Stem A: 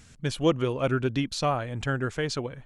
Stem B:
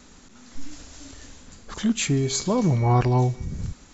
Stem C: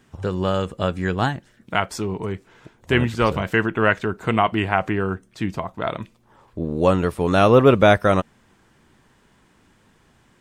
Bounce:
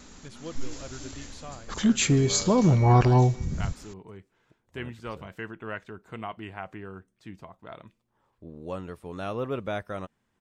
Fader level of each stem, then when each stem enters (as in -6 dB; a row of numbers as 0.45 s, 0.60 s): -17.0 dB, +1.0 dB, -18.0 dB; 0.00 s, 0.00 s, 1.85 s